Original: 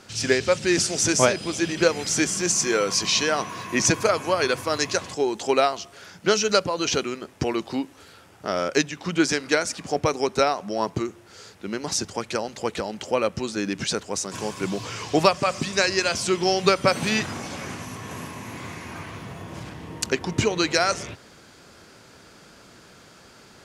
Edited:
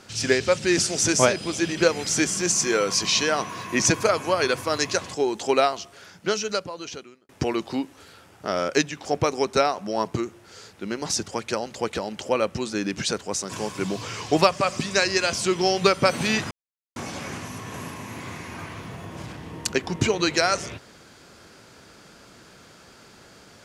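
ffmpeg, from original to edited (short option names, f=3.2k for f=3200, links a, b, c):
-filter_complex "[0:a]asplit=4[a][b][c][d];[a]atrim=end=7.29,asetpts=PTS-STARTPTS,afade=t=out:st=5.68:d=1.61[e];[b]atrim=start=7.29:end=9.052,asetpts=PTS-STARTPTS,afade=t=in:d=0.004:c=hsin[f];[c]atrim=start=9.868:end=17.33,asetpts=PTS-STARTPTS,afade=t=out:st=7.458:d=0.004:c=hsin,apad=pad_dur=0.45[g];[d]atrim=start=17.33,asetpts=PTS-STARTPTS,afade=t=in:d=0.004:c=hsin[h];[e][f]concat=n=2:v=0:a=1[i];[g][h]concat=n=2:v=0:a=1[j];[i][j]acrossfade=d=0.004:c1=hsin:c2=hsin"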